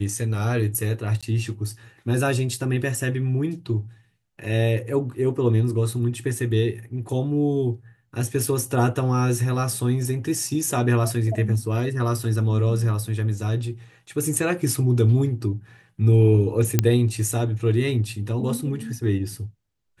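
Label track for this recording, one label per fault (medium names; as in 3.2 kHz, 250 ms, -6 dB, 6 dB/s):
1.210000	1.230000	dropout 16 ms
16.790000	16.790000	pop -3 dBFS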